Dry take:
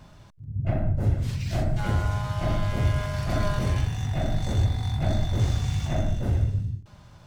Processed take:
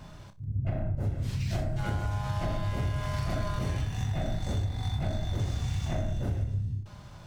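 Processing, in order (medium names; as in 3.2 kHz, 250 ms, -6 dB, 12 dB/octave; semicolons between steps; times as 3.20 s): on a send: flutter echo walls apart 5.2 m, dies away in 0.21 s; on the sum: compression 6:1, threshold -29 dBFS, peak gain reduction 12 dB; trim +2 dB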